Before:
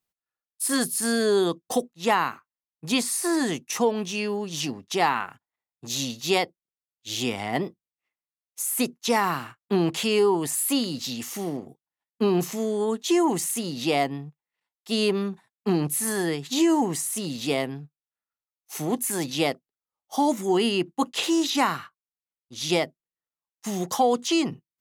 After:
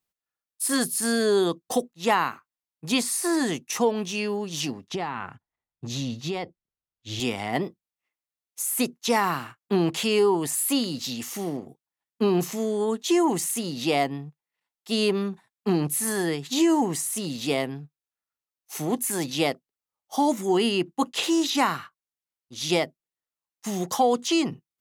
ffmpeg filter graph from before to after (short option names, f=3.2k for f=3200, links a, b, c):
-filter_complex "[0:a]asettb=1/sr,asplit=3[a][b][c];[a]atrim=end=4.894[d];[b]atrim=start=4.89:end=7.2,asetpts=PTS-STARTPTS,afade=t=in:d=0.004:c=qsin,afade=t=out:st=2.306:d=0.004:c=qsin,aemphasis=mode=reproduction:type=bsi,acompressor=threshold=-25dB:ratio=10:attack=3.2:release=140:knee=1:detection=peak[e];[c]atrim=start=7.196[f];[d][e]acrossfade=d=0.004:c1=hsin:c2=qsin[g];[g][f]acrossfade=d=0.004:c1=qsin:c2=hsin"